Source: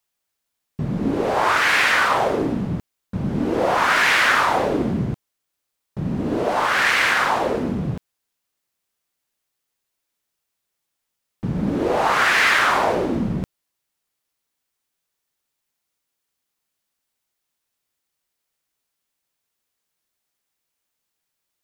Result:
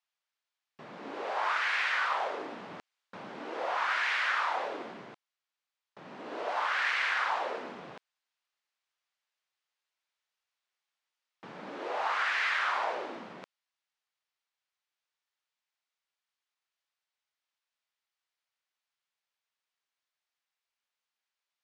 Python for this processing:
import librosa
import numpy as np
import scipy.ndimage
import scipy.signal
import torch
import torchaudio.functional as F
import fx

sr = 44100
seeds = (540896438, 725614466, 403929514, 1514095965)

y = fx.rider(x, sr, range_db=10, speed_s=0.5)
y = fx.bandpass_edges(y, sr, low_hz=790.0, high_hz=4500.0)
y = y * 10.0 ** (-9.0 / 20.0)